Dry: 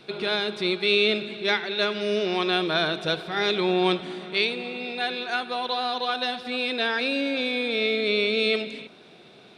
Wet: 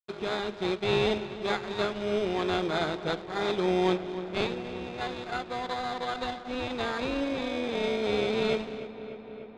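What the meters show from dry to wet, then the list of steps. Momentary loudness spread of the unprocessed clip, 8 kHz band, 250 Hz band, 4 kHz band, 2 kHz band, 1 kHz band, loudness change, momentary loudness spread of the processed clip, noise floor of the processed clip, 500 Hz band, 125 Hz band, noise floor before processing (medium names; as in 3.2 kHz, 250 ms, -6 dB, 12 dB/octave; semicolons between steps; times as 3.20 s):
6 LU, no reading, -2.5 dB, -10.5 dB, -9.0 dB, -3.0 dB, -5.5 dB, 9 LU, -44 dBFS, -3.0 dB, +0.5 dB, -50 dBFS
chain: in parallel at +1 dB: sample-rate reducer 2.8 kHz, jitter 0%; on the sum: crossover distortion -34 dBFS; distance through air 120 m; filtered feedback delay 296 ms, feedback 78%, low-pass 3.7 kHz, level -14.5 dB; trim -8 dB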